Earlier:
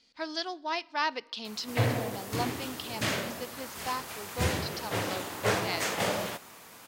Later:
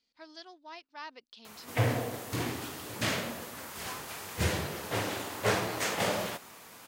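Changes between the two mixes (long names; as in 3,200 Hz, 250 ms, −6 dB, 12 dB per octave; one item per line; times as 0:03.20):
speech −12.0 dB
reverb: off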